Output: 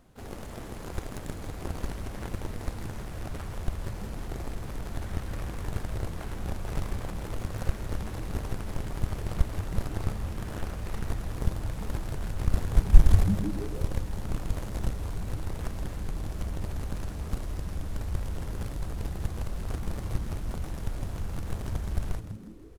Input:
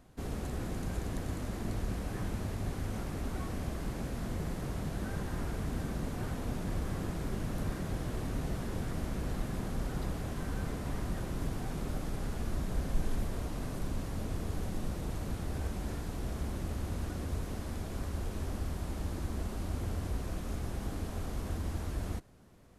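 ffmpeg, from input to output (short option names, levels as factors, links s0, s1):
-filter_complex "[0:a]aeval=exprs='0.126*(cos(1*acos(clip(val(0)/0.126,-1,1)))-cos(1*PI/2))+0.0316*(cos(7*acos(clip(val(0)/0.126,-1,1)))-cos(7*PI/2))+0.000794*(cos(8*acos(clip(val(0)/0.126,-1,1)))-cos(8*PI/2))':c=same,asplit=2[s0][s1];[s1]asetrate=88200,aresample=44100,atempo=0.5,volume=0.282[s2];[s0][s2]amix=inputs=2:normalize=0,asubboost=boost=4.5:cutoff=99,asplit=2[s3][s4];[s4]asplit=5[s5][s6][s7][s8][s9];[s5]adelay=162,afreqshift=-110,volume=0.282[s10];[s6]adelay=324,afreqshift=-220,volume=0.135[s11];[s7]adelay=486,afreqshift=-330,volume=0.0646[s12];[s8]adelay=648,afreqshift=-440,volume=0.0313[s13];[s9]adelay=810,afreqshift=-550,volume=0.015[s14];[s10][s11][s12][s13][s14]amix=inputs=5:normalize=0[s15];[s3][s15]amix=inputs=2:normalize=0,volume=1.33"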